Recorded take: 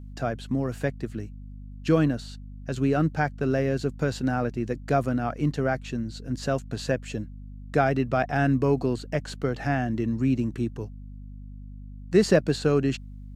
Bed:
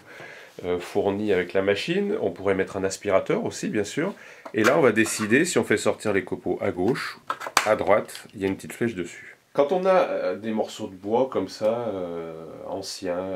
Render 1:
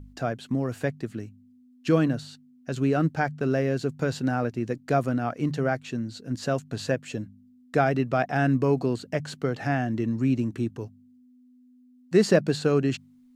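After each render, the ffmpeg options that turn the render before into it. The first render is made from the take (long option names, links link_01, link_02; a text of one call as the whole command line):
ffmpeg -i in.wav -af "bandreject=frequency=50:width_type=h:width=4,bandreject=frequency=100:width_type=h:width=4,bandreject=frequency=150:width_type=h:width=4,bandreject=frequency=200:width_type=h:width=4" out.wav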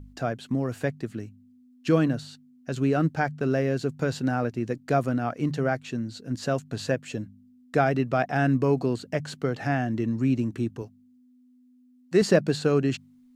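ffmpeg -i in.wav -filter_complex "[0:a]asettb=1/sr,asplit=3[link_01][link_02][link_03];[link_01]atrim=end=10.824[link_04];[link_02]atrim=start=10.82:end=12.22,asetpts=PTS-STARTPTS,afade=type=in:duration=0.004:curve=qsin,afade=type=out:start_time=1.396:duration=0.004:curve=qsin,highpass=frequency=190:poles=1[link_05];[link_03]atrim=start=12.216[link_06];[link_04][link_05]acrossfade=duration=0.004:curve1=hsin:curve2=qsin[link_07];[link_07][link_06]acrossfade=duration=0.004:curve1=qsin:curve2=hsin" out.wav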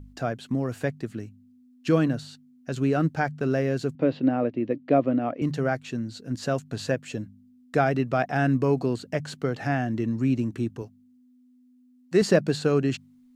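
ffmpeg -i in.wav -filter_complex "[0:a]asettb=1/sr,asplit=3[link_01][link_02][link_03];[link_01]atrim=end=3.954[link_04];[link_02]atrim=start=3.95:end=5.42,asetpts=PTS-STARTPTS,afade=type=in:duration=0.004:curve=qsin,afade=type=out:start_time=1.466:duration=0.004:curve=qsin,highpass=160,equalizer=frequency=290:width_type=q:width=4:gain=9,equalizer=frequency=560:width_type=q:width=4:gain=7,equalizer=frequency=860:width_type=q:width=4:gain=-3,equalizer=frequency=1500:width_type=q:width=4:gain=-9,lowpass=frequency=3300:width=0.5412,lowpass=frequency=3300:width=1.3066[link_05];[link_03]atrim=start=5.416[link_06];[link_04][link_05]acrossfade=duration=0.004:curve1=hsin:curve2=qsin[link_07];[link_07][link_06]acrossfade=duration=0.004:curve1=qsin:curve2=hsin" out.wav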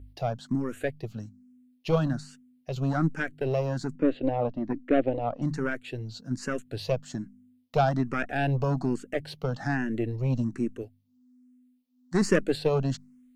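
ffmpeg -i in.wav -filter_complex "[0:a]aeval=exprs='0.531*(cos(1*acos(clip(val(0)/0.531,-1,1)))-cos(1*PI/2))+0.0376*(cos(8*acos(clip(val(0)/0.531,-1,1)))-cos(8*PI/2))':channel_layout=same,asplit=2[link_01][link_02];[link_02]afreqshift=1.2[link_03];[link_01][link_03]amix=inputs=2:normalize=1" out.wav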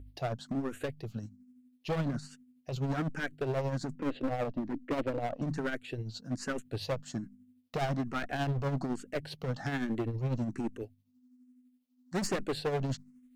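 ffmpeg -i in.wav -af "asoftclip=type=hard:threshold=-27dB,tremolo=f=12:d=0.48" out.wav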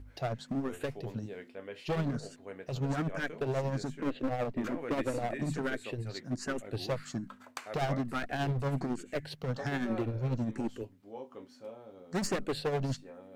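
ffmpeg -i in.wav -i bed.wav -filter_complex "[1:a]volume=-22.5dB[link_01];[0:a][link_01]amix=inputs=2:normalize=0" out.wav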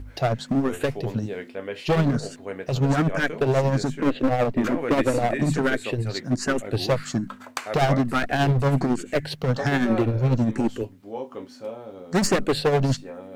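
ffmpeg -i in.wav -af "volume=11.5dB" out.wav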